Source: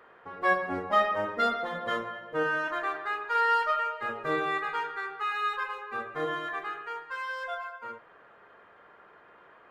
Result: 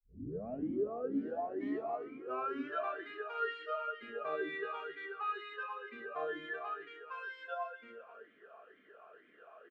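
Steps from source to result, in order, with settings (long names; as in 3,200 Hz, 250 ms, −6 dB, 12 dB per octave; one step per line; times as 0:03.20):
turntable start at the beginning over 2.84 s
downward compressor 1.5 to 1, threshold −40 dBFS, peak gain reduction 7 dB
single-tap delay 261 ms −11.5 dB
on a send at −6.5 dB: convolution reverb RT60 0.80 s, pre-delay 5 ms
on the sum: formant filter swept between two vowels a-i 2.1 Hz
level +7 dB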